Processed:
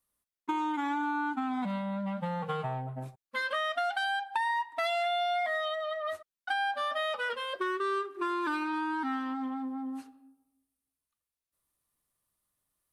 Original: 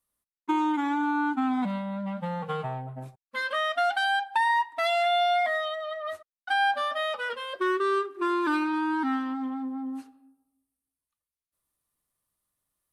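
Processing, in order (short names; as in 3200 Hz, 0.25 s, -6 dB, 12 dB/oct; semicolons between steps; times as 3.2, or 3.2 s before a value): dynamic EQ 310 Hz, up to -4 dB, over -39 dBFS, Q 1.5; compressor 3:1, threshold -29 dBFS, peak gain reduction 7 dB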